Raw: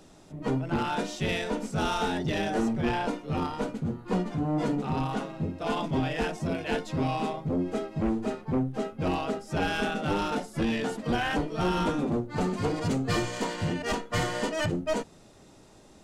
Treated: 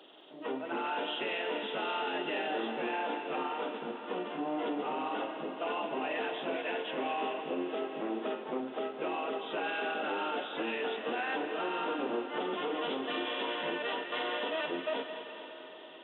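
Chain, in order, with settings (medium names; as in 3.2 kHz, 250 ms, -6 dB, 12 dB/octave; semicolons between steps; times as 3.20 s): knee-point frequency compression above 2.6 kHz 4:1; high-pass 330 Hz 24 dB/octave; peak limiter -26.5 dBFS, peak gain reduction 10 dB; thinning echo 210 ms, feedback 71%, high-pass 570 Hz, level -10.5 dB; reverberation RT60 5.2 s, pre-delay 93 ms, DRR 8.5 dB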